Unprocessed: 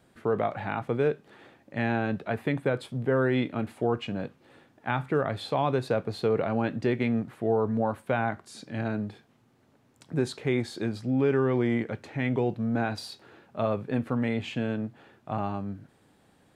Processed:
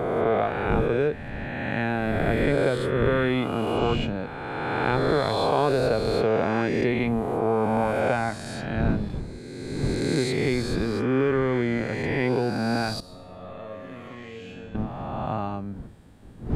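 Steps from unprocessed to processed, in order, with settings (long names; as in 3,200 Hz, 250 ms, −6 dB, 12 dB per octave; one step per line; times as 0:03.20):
peak hold with a rise ahead of every peak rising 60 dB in 2.46 s
wind on the microphone 180 Hz −35 dBFS
0:13.00–0:14.75: tuned comb filter 91 Hz, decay 1 s, harmonics all, mix 90%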